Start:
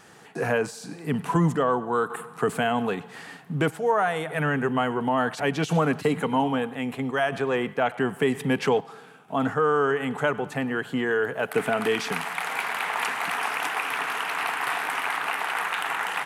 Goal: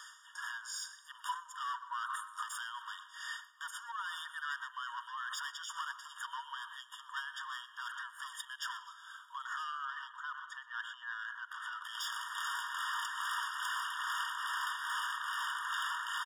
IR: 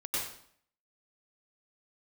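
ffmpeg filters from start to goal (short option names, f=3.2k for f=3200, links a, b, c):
-filter_complex "[0:a]equalizer=f=200:t=o:w=0.33:g=8,equalizer=f=315:t=o:w=0.33:g=-4,equalizer=f=4k:t=o:w=0.33:g=9,equalizer=f=6.3k:t=o:w=0.33:g=11,asplit=2[a][b];[1:a]atrim=start_sample=2205,adelay=29[c];[b][c]afir=irnorm=-1:irlink=0,volume=-25.5dB[d];[a][d]amix=inputs=2:normalize=0,tremolo=f=2.4:d=0.73,asoftclip=type=tanh:threshold=-29.5dB,asettb=1/sr,asplit=3[e][f][g];[e]atrim=end=9.854[h];[f]atrim=start=9.85:end=11.84,asetpts=PTS-STARTPTS,afade=t=in:d=0.004:c=qsin,afade=t=out:st=1.986:d=0.004:c=qsin,aemphasis=mode=reproduction:type=75fm[i];[g]atrim=start=11.836[j];[h][i]acrossfade=d=0.004:c1=hsin:c2=qsin[k];[k][j]acrossfade=d=0.004:c1=qsin:c2=hsin,aecho=1:1:122|244|366:0.0891|0.0392|0.0173,acompressor=threshold=-36dB:ratio=6,afftfilt=real='re*eq(mod(floor(b*sr/1024/940),2),1)':imag='im*eq(mod(floor(b*sr/1024/940),2),1)':win_size=1024:overlap=0.75,volume=3.5dB"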